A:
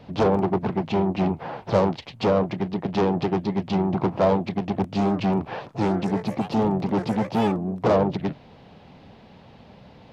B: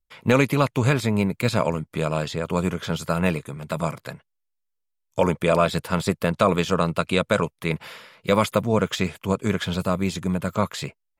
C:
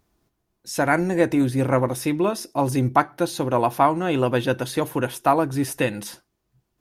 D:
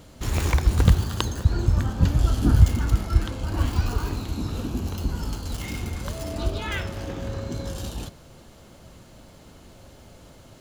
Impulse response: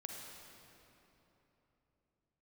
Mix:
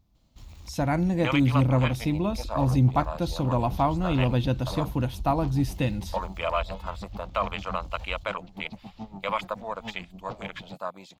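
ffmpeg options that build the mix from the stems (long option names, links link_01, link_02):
-filter_complex "[0:a]aeval=exprs='val(0)*pow(10,-20*(0.5-0.5*cos(2*PI*7*n/s))/20)':channel_layout=same,adelay=2450,volume=-12.5dB[link_01];[1:a]afwtdn=0.0398,highpass=750,adelay=950,volume=-0.5dB[link_02];[2:a]lowshelf=frequency=300:gain=12,volume=-6dB[link_03];[3:a]acompressor=threshold=-24dB:ratio=6,asubboost=boost=11.5:cutoff=65,adelay=150,volume=-19dB[link_04];[link_01][link_02][link_03][link_04]amix=inputs=4:normalize=0,equalizer=frequency=400:width_type=o:width=0.67:gain=-11,equalizer=frequency=1600:width_type=o:width=0.67:gain=-9,equalizer=frequency=4000:width_type=o:width=0.67:gain=4,equalizer=frequency=10000:width_type=o:width=0.67:gain=-10"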